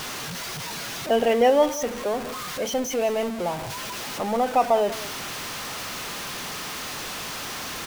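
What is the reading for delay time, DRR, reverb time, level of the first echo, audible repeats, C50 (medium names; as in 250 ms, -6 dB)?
192 ms, no reverb, no reverb, -17.0 dB, 1, no reverb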